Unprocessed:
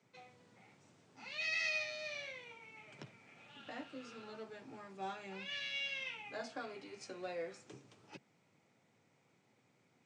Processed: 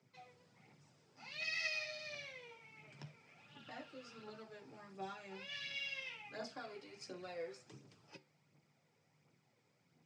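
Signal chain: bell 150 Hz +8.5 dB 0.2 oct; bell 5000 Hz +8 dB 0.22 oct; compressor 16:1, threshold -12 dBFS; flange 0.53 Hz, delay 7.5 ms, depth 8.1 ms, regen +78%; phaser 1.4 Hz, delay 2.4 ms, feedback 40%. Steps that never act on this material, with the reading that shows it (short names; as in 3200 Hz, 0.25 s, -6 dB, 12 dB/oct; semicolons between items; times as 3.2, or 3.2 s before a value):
compressor, threshold -12 dBFS: input peak -26.0 dBFS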